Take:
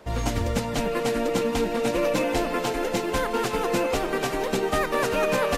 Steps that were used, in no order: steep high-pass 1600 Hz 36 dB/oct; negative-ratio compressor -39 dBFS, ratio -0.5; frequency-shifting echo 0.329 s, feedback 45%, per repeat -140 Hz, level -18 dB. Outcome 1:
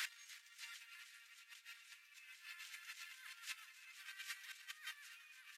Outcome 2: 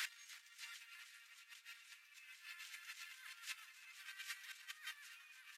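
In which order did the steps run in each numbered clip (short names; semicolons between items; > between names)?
negative-ratio compressor > frequency-shifting echo > steep high-pass; negative-ratio compressor > steep high-pass > frequency-shifting echo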